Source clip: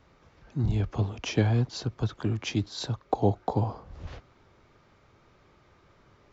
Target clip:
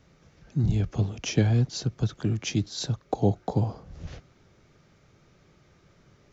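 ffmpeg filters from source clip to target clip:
ffmpeg -i in.wav -af "equalizer=frequency=160:width_type=o:width=0.67:gain=7,equalizer=frequency=1000:width_type=o:width=0.67:gain=-7,equalizer=frequency=6300:width_type=o:width=0.67:gain=7" out.wav

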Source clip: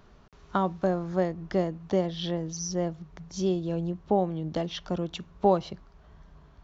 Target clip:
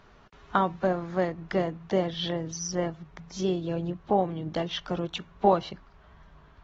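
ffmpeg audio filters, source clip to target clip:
ffmpeg -i in.wav -af "equalizer=frequency=1800:width_type=o:width=2.6:gain=7,volume=-2.5dB" -ar 48000 -c:a aac -b:a 24k out.aac

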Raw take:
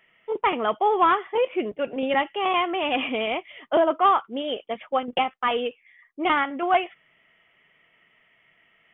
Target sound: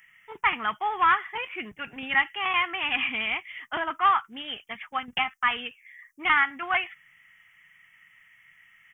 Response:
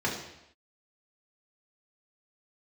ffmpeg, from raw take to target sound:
-af "firequalizer=gain_entry='entry(110,0);entry(260,-13);entry(560,-25);entry(800,-8);entry(1800,5);entry(3700,-6);entry(5800,15)':delay=0.05:min_phase=1,volume=2dB"

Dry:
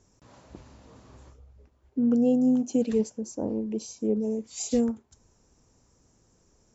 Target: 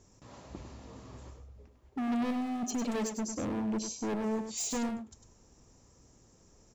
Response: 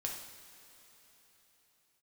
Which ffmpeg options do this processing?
-filter_complex "[0:a]asoftclip=type=tanh:threshold=-25dB,asettb=1/sr,asplit=3[link_01][link_02][link_03];[link_01]atrim=end=2.304[link_04];[link_02]atrim=start=2.3:end=3.28,asetpts=PTS-STARTPTS,afade=type=in:duration=0.004:curve=qsin,afade=type=out:start_time=0.976:duration=0.004:curve=qsin,aecho=1:1:4.8:0.87,atrim=end_sample=43218[link_05];[link_03]atrim=start=3.276[link_06];[link_04][link_05]acrossfade=duration=0.004:curve1=hsin:curve2=qsin[link_07];[link_07][link_06]acrossfade=duration=0.004:curve1=qsin:curve2=hsin,volume=33.5dB,asoftclip=hard,volume=-33.5dB,bandreject=frequency=1500:width=16,asplit=2[link_08][link_09];[link_09]aecho=0:1:101:0.398[link_10];[link_08][link_10]amix=inputs=2:normalize=0,volume=2dB"

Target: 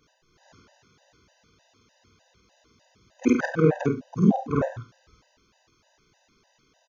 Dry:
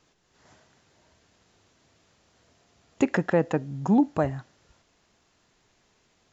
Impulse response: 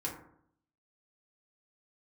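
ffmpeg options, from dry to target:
-filter_complex "[0:a]afftfilt=real='re':imag='-im':win_size=4096:overlap=0.75,asetrate=40517,aresample=44100,asplit=2[link_01][link_02];[link_02]aecho=0:1:32|71:0.15|0.168[link_03];[link_01][link_03]amix=inputs=2:normalize=0,afftfilt=real='re*gt(sin(2*PI*3.3*pts/sr)*(1-2*mod(floor(b*sr/1024/510),2)),0)':imag='im*gt(sin(2*PI*3.3*pts/sr)*(1-2*mod(floor(b*sr/1024/510),2)),0)':win_size=1024:overlap=0.75,volume=8.5dB"

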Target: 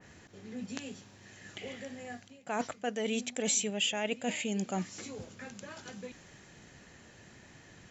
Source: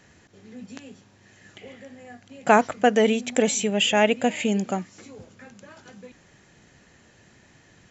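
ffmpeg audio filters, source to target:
ffmpeg -i in.wav -af "areverse,acompressor=threshold=-30dB:ratio=20,areverse,adynamicequalizer=threshold=0.00224:dfrequency=2500:dqfactor=0.7:tfrequency=2500:tqfactor=0.7:attack=5:release=100:ratio=0.375:range=3:mode=boostabove:tftype=highshelf" out.wav

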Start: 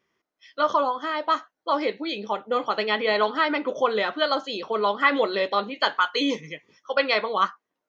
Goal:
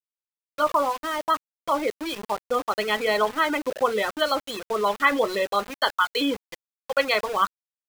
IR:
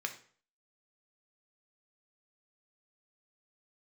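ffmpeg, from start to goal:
-af "afftfilt=real='re*gte(hypot(re,im),0.0562)':imag='im*gte(hypot(re,im),0.0562)':win_size=1024:overlap=0.75,aeval=exprs='val(0)*gte(abs(val(0)),0.0266)':channel_layout=same"

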